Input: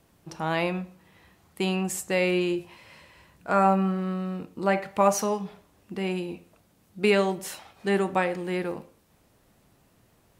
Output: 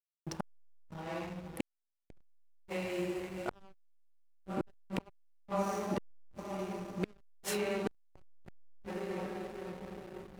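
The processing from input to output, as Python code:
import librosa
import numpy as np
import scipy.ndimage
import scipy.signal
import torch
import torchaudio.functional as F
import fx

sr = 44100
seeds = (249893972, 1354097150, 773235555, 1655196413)

y = fx.echo_diffused(x, sr, ms=588, feedback_pct=63, wet_db=-14.0)
y = fx.gate_flip(y, sr, shuts_db=-23.0, range_db=-32)
y = fx.backlash(y, sr, play_db=-40.5)
y = F.gain(torch.from_numpy(y), 2.0).numpy()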